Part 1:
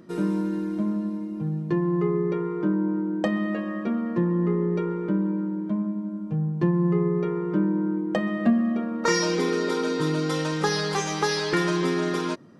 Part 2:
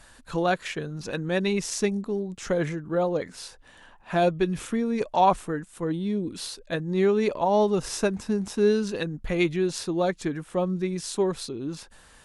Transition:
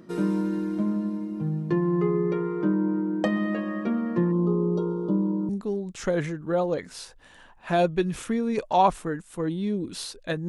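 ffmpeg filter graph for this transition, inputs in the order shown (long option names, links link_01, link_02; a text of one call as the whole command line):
ffmpeg -i cue0.wav -i cue1.wav -filter_complex "[0:a]asplit=3[link_01][link_02][link_03];[link_01]afade=type=out:start_time=4.31:duration=0.02[link_04];[link_02]asuperstop=centerf=2000:order=8:qfactor=1,afade=type=in:start_time=4.31:duration=0.02,afade=type=out:start_time=5.49:duration=0.02[link_05];[link_03]afade=type=in:start_time=5.49:duration=0.02[link_06];[link_04][link_05][link_06]amix=inputs=3:normalize=0,apad=whole_dur=10.48,atrim=end=10.48,atrim=end=5.492[link_07];[1:a]atrim=start=1.918:end=6.91[link_08];[link_07][link_08]acrossfade=duration=0.004:curve1=hsin:curve2=hsin" out.wav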